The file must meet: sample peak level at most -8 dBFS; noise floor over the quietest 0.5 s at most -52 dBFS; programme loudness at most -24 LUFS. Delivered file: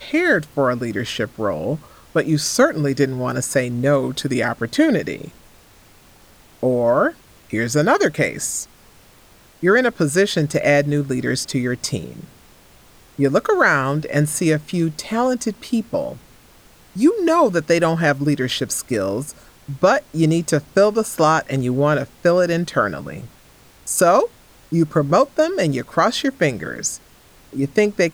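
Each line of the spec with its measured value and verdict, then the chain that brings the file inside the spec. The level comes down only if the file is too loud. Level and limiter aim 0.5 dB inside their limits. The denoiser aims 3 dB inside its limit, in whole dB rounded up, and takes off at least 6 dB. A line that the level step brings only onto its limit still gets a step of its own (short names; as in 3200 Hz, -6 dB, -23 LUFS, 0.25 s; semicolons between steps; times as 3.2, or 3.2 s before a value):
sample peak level -4.5 dBFS: fail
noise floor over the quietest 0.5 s -49 dBFS: fail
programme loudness -19.0 LUFS: fail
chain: gain -5.5 dB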